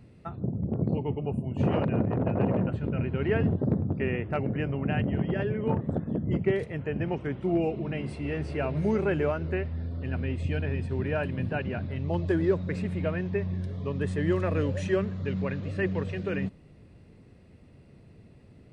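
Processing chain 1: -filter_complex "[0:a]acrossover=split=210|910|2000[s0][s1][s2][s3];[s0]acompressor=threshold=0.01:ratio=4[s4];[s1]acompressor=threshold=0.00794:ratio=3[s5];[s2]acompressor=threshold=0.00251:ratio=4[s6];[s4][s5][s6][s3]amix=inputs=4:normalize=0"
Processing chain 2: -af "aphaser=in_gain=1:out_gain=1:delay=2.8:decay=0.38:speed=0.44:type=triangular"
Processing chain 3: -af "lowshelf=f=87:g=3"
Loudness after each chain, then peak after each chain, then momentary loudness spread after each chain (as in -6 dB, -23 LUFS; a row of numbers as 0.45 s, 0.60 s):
-38.0 LUFS, -28.5 LUFS, -28.5 LUFS; -21.5 dBFS, -11.0 dBFS, -11.5 dBFS; 14 LU, 8 LU, 6 LU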